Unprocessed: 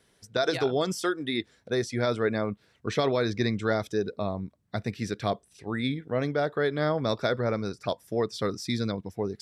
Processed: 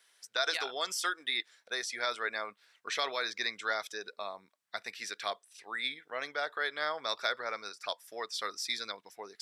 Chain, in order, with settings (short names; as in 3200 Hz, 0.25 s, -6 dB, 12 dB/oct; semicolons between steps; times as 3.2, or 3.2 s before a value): HPF 1200 Hz 12 dB/oct; gain +1.5 dB